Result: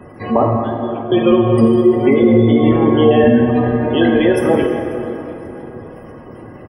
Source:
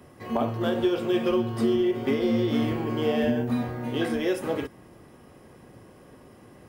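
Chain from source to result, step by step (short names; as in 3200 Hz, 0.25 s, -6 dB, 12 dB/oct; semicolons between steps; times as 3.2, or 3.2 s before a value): spectral gate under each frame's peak -25 dB strong; 0.56–1.12 double band-pass 740 Hz, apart 2.9 oct; feedback echo 0.539 s, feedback 41%, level -23.5 dB; plate-style reverb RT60 3.5 s, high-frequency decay 0.5×, DRR 2 dB; maximiser +13.5 dB; gain -1 dB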